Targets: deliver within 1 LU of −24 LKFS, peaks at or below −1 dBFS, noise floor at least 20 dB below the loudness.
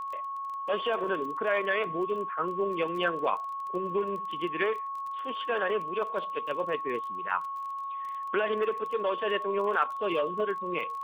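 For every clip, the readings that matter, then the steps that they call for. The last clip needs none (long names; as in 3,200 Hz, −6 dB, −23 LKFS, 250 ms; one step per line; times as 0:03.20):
crackle rate 21 per second; interfering tone 1,100 Hz; level of the tone −33 dBFS; integrated loudness −30.5 LKFS; sample peak −13.5 dBFS; target loudness −24.0 LKFS
→ click removal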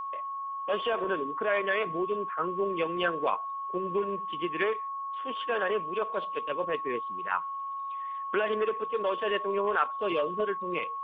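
crackle rate 0 per second; interfering tone 1,100 Hz; level of the tone −33 dBFS
→ notch filter 1,100 Hz, Q 30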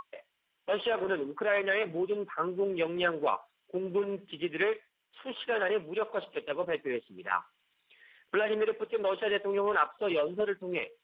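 interfering tone none found; integrated loudness −31.5 LKFS; sample peak −14.0 dBFS; target loudness −24.0 LKFS
→ level +7.5 dB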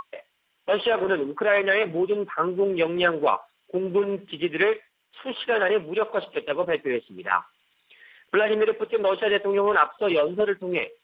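integrated loudness −24.0 LKFS; sample peak −6.5 dBFS; background noise floor −71 dBFS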